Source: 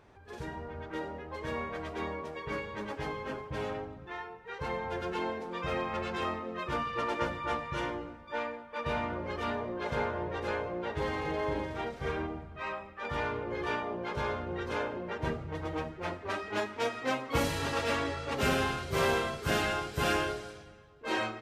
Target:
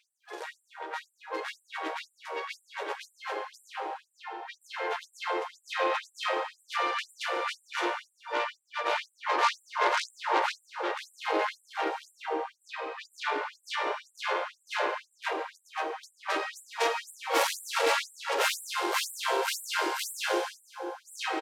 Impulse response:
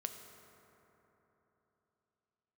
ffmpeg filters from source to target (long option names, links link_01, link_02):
-filter_complex "[0:a]asettb=1/sr,asplit=3[link_01][link_02][link_03];[link_01]atrim=end=9.114[link_04];[link_02]atrim=start=9.11:end=10.52,asetpts=PTS-STARTPTS,afade=type=in:duration=0.004:curve=qsin,afade=type=out:start_time=1.406:duration=0.004:curve=qsin,equalizer=frequency=1000:width_type=o:width=1:gain=10[link_05];[link_03]atrim=start=10.516[link_06];[link_04][link_05]acrossfade=duration=0.004:curve1=hsin:curve2=qsin[link_07];[link_07][link_06]acrossfade=duration=0.004:curve1=qsin:curve2=hsin,aeval=exprs='0.168*(cos(1*acos(clip(val(0)/0.168,-1,1)))-cos(1*PI/2))+0.0266*(cos(8*acos(clip(val(0)/0.168,-1,1)))-cos(8*PI/2))':channel_layout=same,asplit=2[link_08][link_09];[link_09]adelay=140,highpass=300,lowpass=3400,asoftclip=type=hard:threshold=-23dB,volume=-13dB[link_10];[link_08][link_10]amix=inputs=2:normalize=0[link_11];[1:a]atrim=start_sample=2205,asetrate=32634,aresample=44100[link_12];[link_11][link_12]afir=irnorm=-1:irlink=0,afftfilt=real='re*gte(b*sr/1024,300*pow(7500/300,0.5+0.5*sin(2*PI*2*pts/sr)))':imag='im*gte(b*sr/1024,300*pow(7500/300,0.5+0.5*sin(2*PI*2*pts/sr)))':win_size=1024:overlap=0.75,volume=5dB"